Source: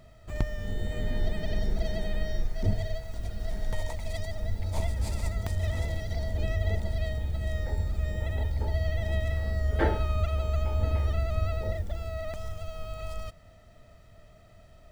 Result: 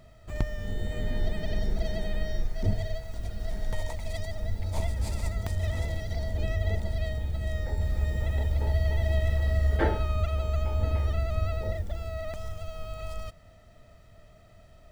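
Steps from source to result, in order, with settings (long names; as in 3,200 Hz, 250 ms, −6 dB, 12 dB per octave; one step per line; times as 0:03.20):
0:07.52–0:09.77: feedback echo at a low word length 292 ms, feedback 35%, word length 9 bits, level −5 dB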